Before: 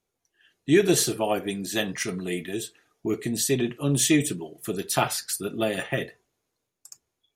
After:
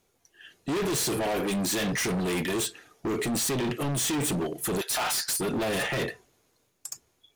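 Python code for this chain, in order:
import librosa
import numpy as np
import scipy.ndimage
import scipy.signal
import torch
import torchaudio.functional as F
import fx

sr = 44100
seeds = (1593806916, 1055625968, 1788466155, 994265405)

p1 = fx.highpass(x, sr, hz=680.0, slope=24, at=(4.81, 5.39))
p2 = fx.over_compress(p1, sr, threshold_db=-31.0, ratio=-1.0)
p3 = p1 + (p2 * 10.0 ** (3.0 / 20.0))
y = np.clip(10.0 ** (26.0 / 20.0) * p3, -1.0, 1.0) / 10.0 ** (26.0 / 20.0)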